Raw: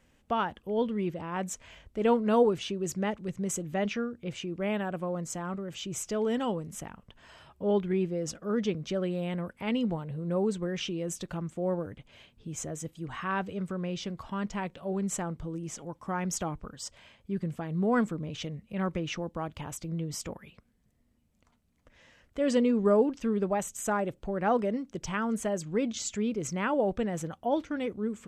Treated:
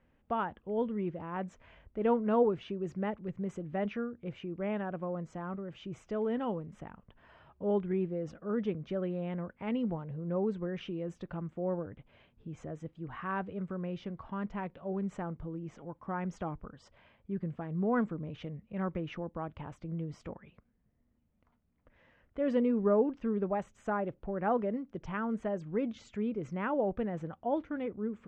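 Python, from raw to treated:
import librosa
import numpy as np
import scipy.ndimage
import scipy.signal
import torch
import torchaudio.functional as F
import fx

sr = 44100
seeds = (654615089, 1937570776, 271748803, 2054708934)

y = scipy.signal.sosfilt(scipy.signal.butter(2, 1900.0, 'lowpass', fs=sr, output='sos'), x)
y = y * 10.0 ** (-3.5 / 20.0)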